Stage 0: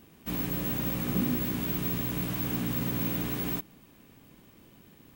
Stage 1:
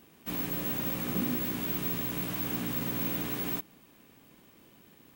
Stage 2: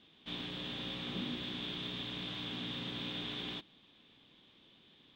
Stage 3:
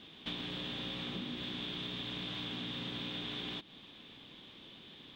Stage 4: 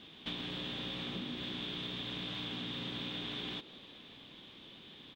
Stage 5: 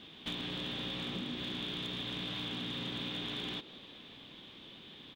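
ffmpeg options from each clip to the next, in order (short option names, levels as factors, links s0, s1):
-af "lowshelf=f=170:g=-9.5"
-af "lowpass=f=3500:t=q:w=11,volume=0.376"
-af "acompressor=threshold=0.00447:ratio=10,volume=2.99"
-filter_complex "[0:a]asplit=6[s0][s1][s2][s3][s4][s5];[s1]adelay=182,afreqshift=78,volume=0.126[s6];[s2]adelay=364,afreqshift=156,volume=0.0759[s7];[s3]adelay=546,afreqshift=234,volume=0.0452[s8];[s4]adelay=728,afreqshift=312,volume=0.0272[s9];[s5]adelay=910,afreqshift=390,volume=0.0164[s10];[s0][s6][s7][s8][s9][s10]amix=inputs=6:normalize=0"
-af "asoftclip=type=hard:threshold=0.0224,volume=1.19"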